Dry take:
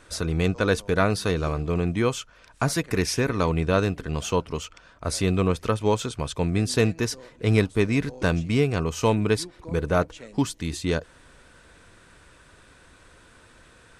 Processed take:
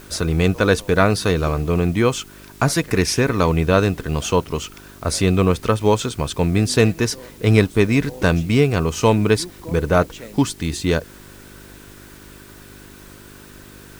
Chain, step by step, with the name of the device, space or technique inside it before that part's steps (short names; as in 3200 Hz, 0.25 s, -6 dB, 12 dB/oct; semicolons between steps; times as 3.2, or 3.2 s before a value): video cassette with head-switching buzz (buzz 50 Hz, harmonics 8, -51 dBFS -1 dB/oct; white noise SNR 29 dB); gain +6 dB